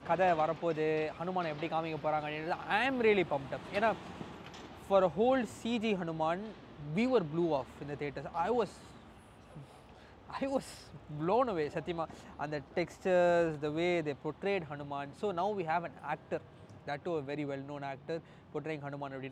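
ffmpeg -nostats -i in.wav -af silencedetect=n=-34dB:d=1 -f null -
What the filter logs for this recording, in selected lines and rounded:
silence_start: 8.65
silence_end: 10.30 | silence_duration: 1.66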